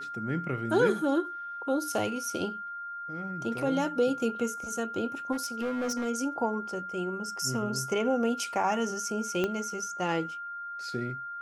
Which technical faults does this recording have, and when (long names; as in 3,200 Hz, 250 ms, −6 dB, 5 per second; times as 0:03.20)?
whistle 1,400 Hz −36 dBFS
0:05.32–0:06.07: clipping −27.5 dBFS
0:09.44: click −16 dBFS